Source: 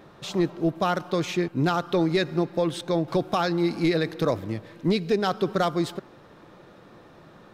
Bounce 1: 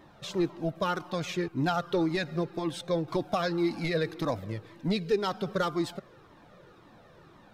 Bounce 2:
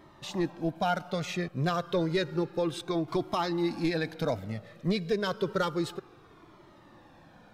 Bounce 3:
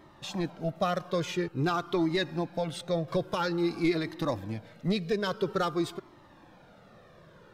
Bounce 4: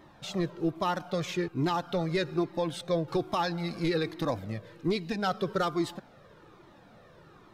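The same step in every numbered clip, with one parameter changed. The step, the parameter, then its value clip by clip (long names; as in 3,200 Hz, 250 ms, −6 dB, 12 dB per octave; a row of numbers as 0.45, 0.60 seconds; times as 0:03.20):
flanger whose copies keep moving one way, speed: 1.9, 0.3, 0.49, 1.2 Hertz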